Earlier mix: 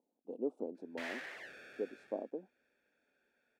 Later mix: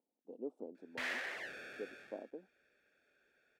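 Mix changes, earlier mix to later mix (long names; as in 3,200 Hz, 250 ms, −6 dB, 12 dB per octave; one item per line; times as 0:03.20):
speech −6.5 dB
background +4.5 dB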